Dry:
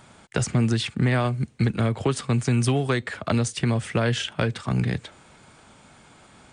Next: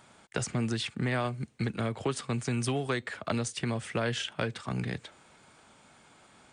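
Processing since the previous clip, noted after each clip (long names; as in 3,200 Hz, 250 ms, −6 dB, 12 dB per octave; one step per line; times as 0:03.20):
low-shelf EQ 170 Hz −8 dB
level −5.5 dB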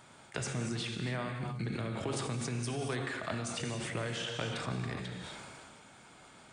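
downward compressor, threshold −36 dBFS, peak gain reduction 11 dB
reverb whose tail is shaped and stops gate 310 ms flat, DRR 3 dB
level that may fall only so fast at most 21 dB per second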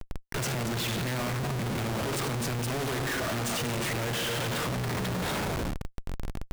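comparator with hysteresis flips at −46.5 dBFS
level +7.5 dB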